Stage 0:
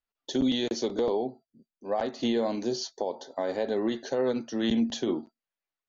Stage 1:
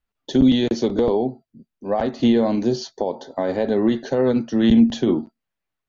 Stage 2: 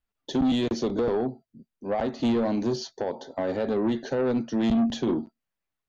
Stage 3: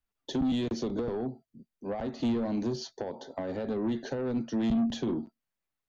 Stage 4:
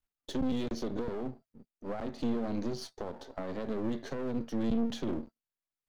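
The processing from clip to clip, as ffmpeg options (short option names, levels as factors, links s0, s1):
-af "bass=f=250:g=10,treble=f=4000:g=-7,volume=2.11"
-af "asoftclip=type=tanh:threshold=0.168,volume=0.668"
-filter_complex "[0:a]acrossover=split=250[s0][s1];[s1]acompressor=threshold=0.0316:ratio=6[s2];[s0][s2]amix=inputs=2:normalize=0,volume=0.75"
-af "aeval=exprs='if(lt(val(0),0),0.251*val(0),val(0))':c=same"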